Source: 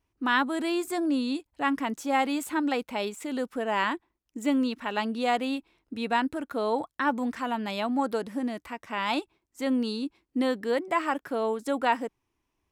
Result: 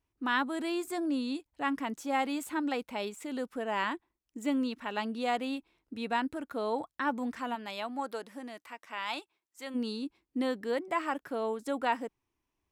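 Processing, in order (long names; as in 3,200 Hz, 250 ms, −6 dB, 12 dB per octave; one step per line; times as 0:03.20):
0:07.54–0:09.74: high-pass filter 470 Hz → 1,200 Hz 6 dB per octave
level −5 dB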